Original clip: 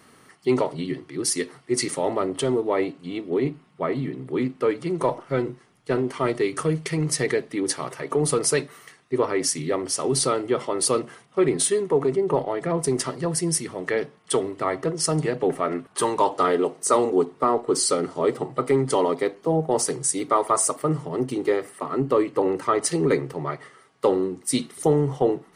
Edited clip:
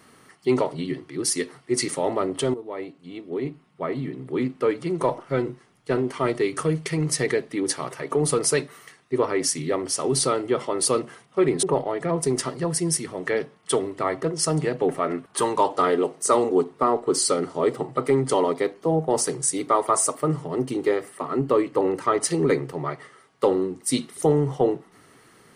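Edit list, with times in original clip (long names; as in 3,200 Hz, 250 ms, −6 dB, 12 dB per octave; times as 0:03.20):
0:02.54–0:04.52: fade in, from −13 dB
0:11.63–0:12.24: remove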